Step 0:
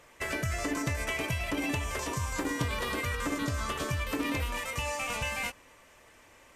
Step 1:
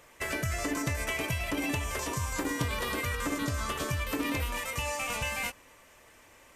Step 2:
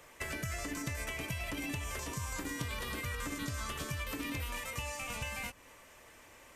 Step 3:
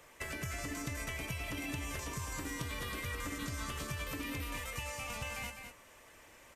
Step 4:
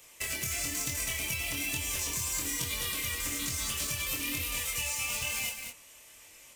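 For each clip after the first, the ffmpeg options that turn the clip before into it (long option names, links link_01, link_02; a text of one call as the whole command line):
ffmpeg -i in.wav -af "highshelf=frequency=11000:gain=7.5" out.wav
ffmpeg -i in.wav -filter_complex "[0:a]acrossover=split=210|1500[link_01][link_02][link_03];[link_01]acompressor=threshold=-39dB:ratio=4[link_04];[link_02]acompressor=threshold=-46dB:ratio=4[link_05];[link_03]acompressor=threshold=-41dB:ratio=4[link_06];[link_04][link_05][link_06]amix=inputs=3:normalize=0" out.wav
ffmpeg -i in.wav -af "aecho=1:1:204:0.447,volume=-2dB" out.wav
ffmpeg -i in.wav -filter_complex "[0:a]flanger=delay=22.5:depth=4:speed=1.1,asplit=2[link_01][link_02];[link_02]acrusher=bits=7:mix=0:aa=0.000001,volume=-6dB[link_03];[link_01][link_03]amix=inputs=2:normalize=0,aexciter=amount=3.5:drive=5.5:freq=2300,volume=-1dB" out.wav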